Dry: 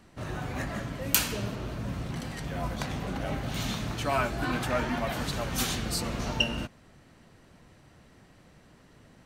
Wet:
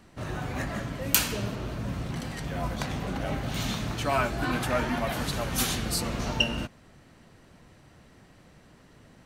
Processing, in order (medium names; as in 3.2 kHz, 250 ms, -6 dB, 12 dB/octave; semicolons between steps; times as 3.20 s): 4.51–6.04 s: peaking EQ 11 kHz +5.5 dB 0.34 oct; trim +1.5 dB